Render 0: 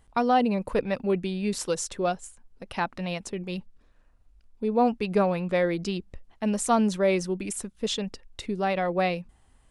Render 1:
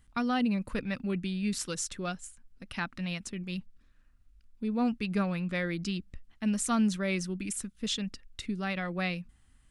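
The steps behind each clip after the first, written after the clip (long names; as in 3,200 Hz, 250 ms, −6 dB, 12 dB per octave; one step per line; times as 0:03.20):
flat-topped bell 610 Hz −11 dB
level −2 dB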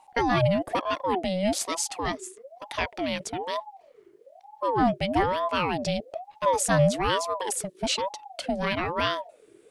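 ring modulator whose carrier an LFO sweeps 610 Hz, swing 40%, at 1.1 Hz
level +8.5 dB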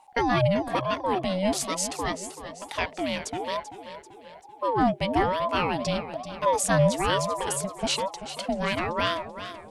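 feedback echo with a swinging delay time 386 ms, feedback 49%, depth 88 cents, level −12 dB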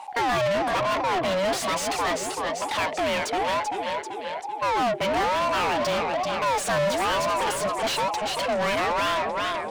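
mid-hump overdrive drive 33 dB, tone 3,200 Hz, clips at −9.5 dBFS
level −7.5 dB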